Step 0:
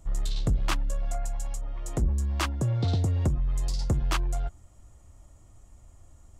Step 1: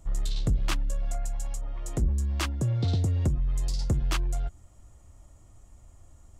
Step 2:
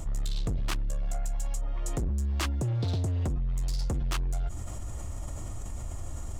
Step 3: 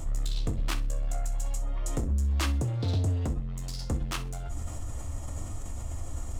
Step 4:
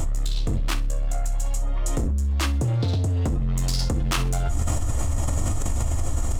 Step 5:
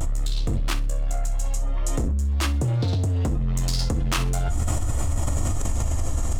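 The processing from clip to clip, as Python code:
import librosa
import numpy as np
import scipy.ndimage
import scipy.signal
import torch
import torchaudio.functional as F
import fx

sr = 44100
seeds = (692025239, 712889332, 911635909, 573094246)

y1 = fx.dynamic_eq(x, sr, hz=930.0, q=0.86, threshold_db=-48.0, ratio=4.0, max_db=-5)
y2 = np.clip(y1, -10.0 ** (-25.5 / 20.0), 10.0 ** (-25.5 / 20.0))
y2 = fx.env_flatten(y2, sr, amount_pct=70)
y2 = y2 * librosa.db_to_amplitude(-1.5)
y3 = fx.echo_feedback(y2, sr, ms=64, feedback_pct=29, wet_db=-17.5)
y3 = fx.rev_gated(y3, sr, seeds[0], gate_ms=90, shape='falling', drr_db=7.5)
y4 = fx.env_flatten(y3, sr, amount_pct=100)
y4 = y4 * librosa.db_to_amplitude(2.0)
y5 = fx.vibrato(y4, sr, rate_hz=0.46, depth_cents=32.0)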